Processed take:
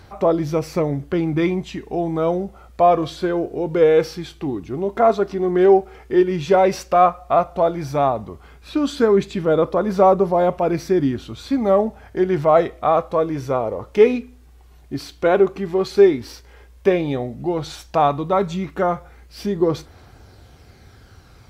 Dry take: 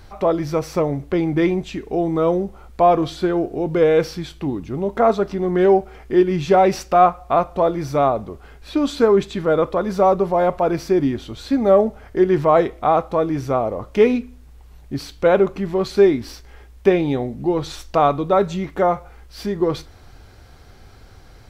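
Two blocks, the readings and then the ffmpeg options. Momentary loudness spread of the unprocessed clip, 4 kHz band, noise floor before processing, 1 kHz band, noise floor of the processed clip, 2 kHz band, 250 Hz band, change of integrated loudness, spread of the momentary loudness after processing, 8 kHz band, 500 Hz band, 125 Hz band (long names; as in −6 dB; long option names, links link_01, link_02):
10 LU, −0.5 dB, −45 dBFS, −0.5 dB, −47 dBFS, −0.5 dB, −1.0 dB, −0.5 dB, 12 LU, can't be measured, 0.0 dB, −0.5 dB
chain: -af "highpass=62,aphaser=in_gain=1:out_gain=1:delay=2.9:decay=0.29:speed=0.1:type=triangular,volume=-1dB"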